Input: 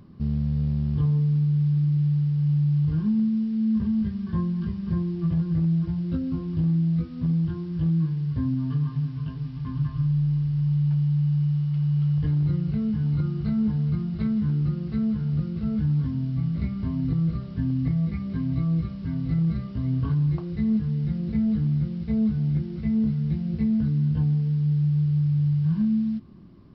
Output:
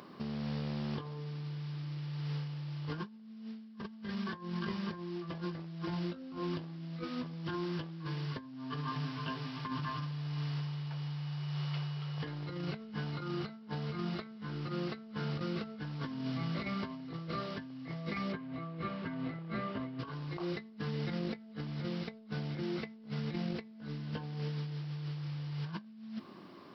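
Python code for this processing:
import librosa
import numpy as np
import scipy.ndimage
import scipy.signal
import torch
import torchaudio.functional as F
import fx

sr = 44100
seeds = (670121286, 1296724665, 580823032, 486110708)

y = fx.lowpass(x, sr, hz=2600.0, slope=12, at=(18.32, 19.99))
y = scipy.signal.sosfilt(scipy.signal.butter(2, 540.0, 'highpass', fs=sr, output='sos'), y)
y = fx.over_compress(y, sr, threshold_db=-46.0, ratio=-0.5)
y = y * librosa.db_to_amplitude(7.5)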